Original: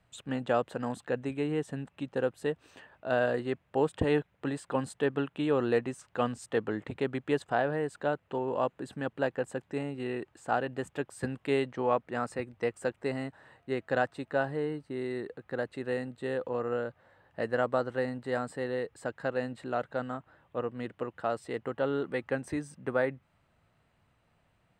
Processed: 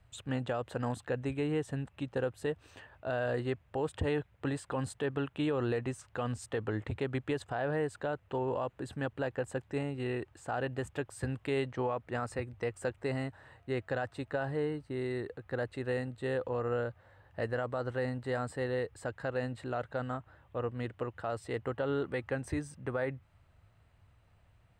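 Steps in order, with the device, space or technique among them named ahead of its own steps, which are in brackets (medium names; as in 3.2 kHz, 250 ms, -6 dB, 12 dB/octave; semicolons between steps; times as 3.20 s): car stereo with a boomy subwoofer (resonant low shelf 130 Hz +9 dB, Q 1.5; peak limiter -24 dBFS, peak gain reduction 11 dB)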